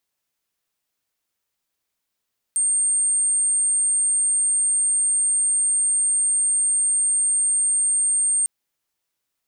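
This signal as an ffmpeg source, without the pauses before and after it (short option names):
-f lavfi -i "sine=f=8650:d=5.9:r=44100,volume=1.06dB"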